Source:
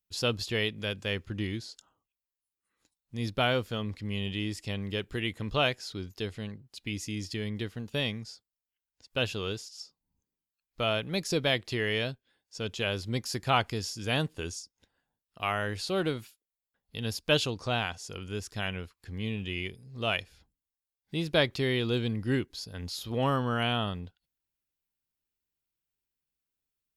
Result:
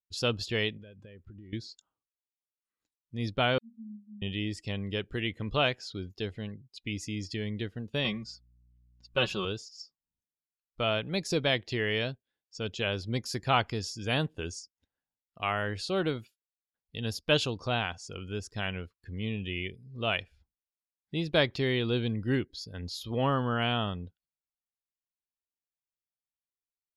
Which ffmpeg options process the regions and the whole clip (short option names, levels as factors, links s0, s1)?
-filter_complex "[0:a]asettb=1/sr,asplit=3[s0][s1][s2];[s0]atrim=end=0.774[s3];[s1]atrim=start=0.77:end=1.53,asetpts=PTS-STARTPTS,afade=t=in:d=0.004:c=qsin,afade=t=out:st=0.756:d=0.004:c=qsin,highshelf=f=2900:g=-11.5,acompressor=threshold=0.00562:ratio=12:attack=3.2:release=140:knee=1:detection=peak[s4];[s2]atrim=start=1.526[s5];[s3][s4]acrossfade=d=0.004:c1=hsin:c2=qsin[s6];[s6][s5]acrossfade=d=0.004:c1=qsin:c2=hsin,asettb=1/sr,asplit=3[s7][s8][s9];[s7]atrim=end=3.584[s10];[s8]atrim=start=3.58:end=4.22,asetpts=PTS-STARTPTS,afade=t=in:d=0.004:c=qsin,afade=t=out:st=0.636:d=0.004:c=qsin,asuperpass=centerf=220:order=20:qfactor=6.5,aemphasis=mode=production:type=bsi[s11];[s9]atrim=start=4.216[s12];[s10][s11]acrossfade=d=0.004:c1=hsin:c2=qsin[s13];[s13][s12]acrossfade=d=0.004:c1=qsin:c2=hsin,asettb=1/sr,asplit=3[s14][s15][s16];[s14]atrim=end=8.044[s17];[s15]atrim=start=8.04:end=9.45,asetpts=PTS-STARTPTS,afade=t=in:d=0.004:c=qsin,afade=t=out:st=1.406:d=0.004:c=qsin,equalizer=f=1100:t=o:w=0.4:g=7,aecho=1:1:5.4:0.81,atrim=end_sample=62181,aeval=exprs='val(0)+0.001*(sin(2*PI*60*n/s)+sin(2*PI*2*60*n/s)/2+sin(2*PI*3*60*n/s)/3+sin(2*PI*4*60*n/s)/4+sin(2*PI*5*60*n/s)/5)':c=same[s18];[s16]atrim=start=9.446[s19];[s17][s18]acrossfade=d=0.004:c1=hsin:c2=qsin[s20];[s20][s19]acrossfade=d=0.004:c1=qsin:c2=hsin,afftdn=nr=15:nf=-51,highshelf=f=8900:g=-5.5"